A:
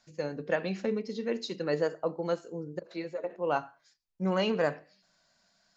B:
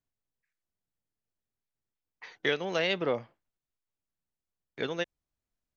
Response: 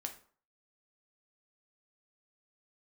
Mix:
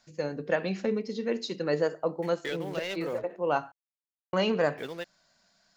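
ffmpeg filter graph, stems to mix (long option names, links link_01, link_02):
-filter_complex "[0:a]acontrast=67,volume=-4.5dB,asplit=3[link_01][link_02][link_03];[link_01]atrim=end=3.72,asetpts=PTS-STARTPTS,afade=type=out:start_time=3.716:duration=0.004:curve=hsin[link_04];[link_02]atrim=start=3.72:end=4.33,asetpts=PTS-STARTPTS,volume=0[link_05];[link_03]atrim=start=4.33,asetpts=PTS-STARTPTS,afade=type=in:duration=0.004:curve=hsin[link_06];[link_04][link_05][link_06]concat=n=3:v=0:a=1[link_07];[1:a]afwtdn=0.00562,acrusher=bits=7:mix=0:aa=0.5,asoftclip=type=tanh:threshold=-23dB,volume=-3.5dB[link_08];[link_07][link_08]amix=inputs=2:normalize=0"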